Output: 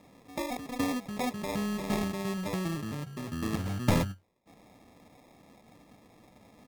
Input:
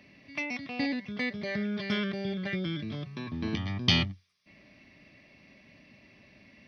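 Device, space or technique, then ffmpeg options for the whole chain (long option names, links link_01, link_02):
crushed at another speed: -af "asetrate=35280,aresample=44100,acrusher=samples=37:mix=1:aa=0.000001,asetrate=55125,aresample=44100"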